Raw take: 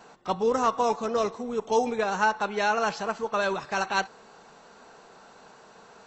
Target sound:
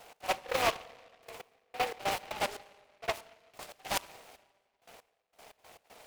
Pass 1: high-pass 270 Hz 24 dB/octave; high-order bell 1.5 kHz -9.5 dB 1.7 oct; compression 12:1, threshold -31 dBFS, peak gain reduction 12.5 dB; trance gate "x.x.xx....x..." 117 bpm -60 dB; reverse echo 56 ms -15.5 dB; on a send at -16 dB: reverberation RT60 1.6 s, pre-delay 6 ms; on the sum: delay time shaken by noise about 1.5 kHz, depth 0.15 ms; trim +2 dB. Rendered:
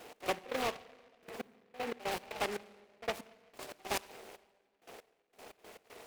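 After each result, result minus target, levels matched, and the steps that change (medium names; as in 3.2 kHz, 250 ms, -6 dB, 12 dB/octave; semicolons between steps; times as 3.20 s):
compression: peak gain reduction +12.5 dB; 250 Hz band +7.5 dB
remove: compression 12:1, threshold -31 dBFS, peak gain reduction 12.5 dB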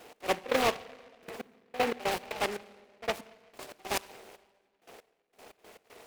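250 Hz band +6.5 dB
change: high-pass 570 Hz 24 dB/octave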